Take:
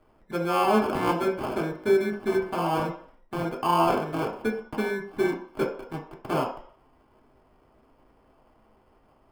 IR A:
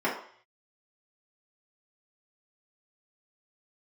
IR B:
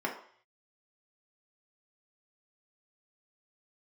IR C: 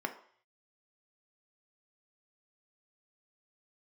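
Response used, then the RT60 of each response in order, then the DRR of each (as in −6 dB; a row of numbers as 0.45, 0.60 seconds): B; 0.55, 0.55, 0.55 seconds; −7.5, −1.5, 5.0 decibels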